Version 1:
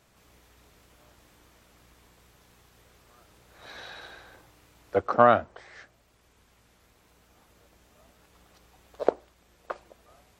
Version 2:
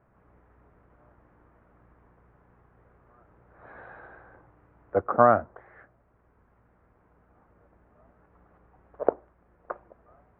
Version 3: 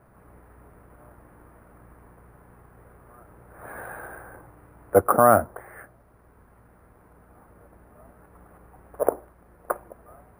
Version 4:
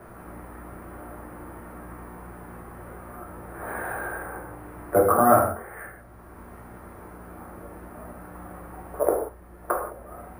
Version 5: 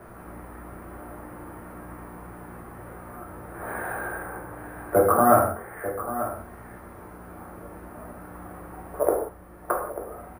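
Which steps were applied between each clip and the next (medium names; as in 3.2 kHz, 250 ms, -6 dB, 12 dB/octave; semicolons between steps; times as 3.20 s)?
inverse Chebyshev low-pass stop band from 5.2 kHz, stop band 60 dB; peaking EQ 130 Hz +2 dB
peak limiter -12.5 dBFS, peak gain reduction 9 dB; sample-and-hold 4×; trim +8.5 dB
gated-style reverb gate 210 ms falling, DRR -3 dB; three bands compressed up and down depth 40%; trim +2 dB
delay 891 ms -12 dB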